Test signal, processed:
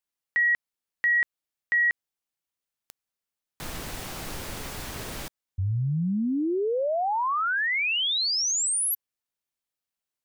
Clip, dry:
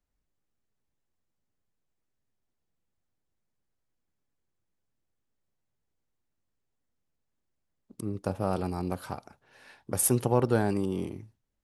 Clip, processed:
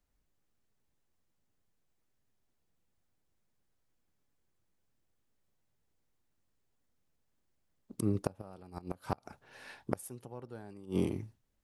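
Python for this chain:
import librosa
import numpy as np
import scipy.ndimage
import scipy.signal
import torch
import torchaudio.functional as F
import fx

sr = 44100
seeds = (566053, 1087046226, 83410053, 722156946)

y = fx.gate_flip(x, sr, shuts_db=-20.0, range_db=-25)
y = y * librosa.db_to_amplitude(3.0)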